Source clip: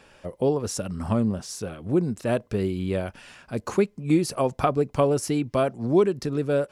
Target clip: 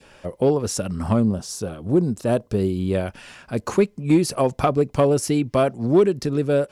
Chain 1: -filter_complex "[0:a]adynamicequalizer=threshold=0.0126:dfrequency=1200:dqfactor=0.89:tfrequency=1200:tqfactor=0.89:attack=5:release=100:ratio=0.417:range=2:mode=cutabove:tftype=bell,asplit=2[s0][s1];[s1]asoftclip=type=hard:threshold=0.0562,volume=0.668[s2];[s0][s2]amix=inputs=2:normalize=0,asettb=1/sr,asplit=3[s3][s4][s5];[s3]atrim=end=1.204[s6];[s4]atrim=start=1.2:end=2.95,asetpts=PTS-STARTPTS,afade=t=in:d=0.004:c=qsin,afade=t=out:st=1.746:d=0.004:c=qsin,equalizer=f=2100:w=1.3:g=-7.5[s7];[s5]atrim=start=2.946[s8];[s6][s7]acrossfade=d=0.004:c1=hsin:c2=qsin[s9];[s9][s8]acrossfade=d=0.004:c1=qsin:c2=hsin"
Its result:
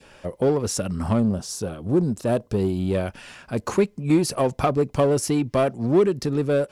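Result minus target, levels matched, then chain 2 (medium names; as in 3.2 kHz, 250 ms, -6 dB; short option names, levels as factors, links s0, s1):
hard clipper: distortion +11 dB
-filter_complex "[0:a]adynamicequalizer=threshold=0.0126:dfrequency=1200:dqfactor=0.89:tfrequency=1200:tqfactor=0.89:attack=5:release=100:ratio=0.417:range=2:mode=cutabove:tftype=bell,asplit=2[s0][s1];[s1]asoftclip=type=hard:threshold=0.158,volume=0.668[s2];[s0][s2]amix=inputs=2:normalize=0,asettb=1/sr,asplit=3[s3][s4][s5];[s3]atrim=end=1.204[s6];[s4]atrim=start=1.2:end=2.95,asetpts=PTS-STARTPTS,afade=t=in:d=0.004:c=qsin,afade=t=out:st=1.746:d=0.004:c=qsin,equalizer=f=2100:w=1.3:g=-7.5[s7];[s5]atrim=start=2.946[s8];[s6][s7]acrossfade=d=0.004:c1=hsin:c2=qsin[s9];[s9][s8]acrossfade=d=0.004:c1=qsin:c2=hsin"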